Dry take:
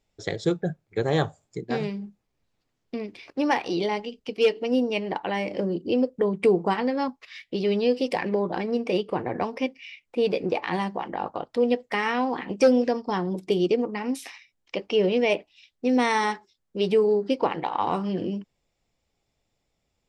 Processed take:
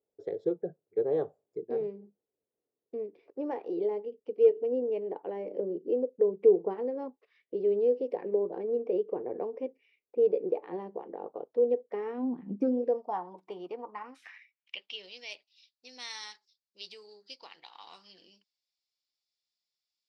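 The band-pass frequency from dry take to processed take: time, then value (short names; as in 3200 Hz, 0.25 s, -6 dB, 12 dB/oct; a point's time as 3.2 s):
band-pass, Q 4
12.08 s 440 Hz
12.42 s 180 Hz
13.26 s 960 Hz
13.9 s 960 Hz
15.1 s 4600 Hz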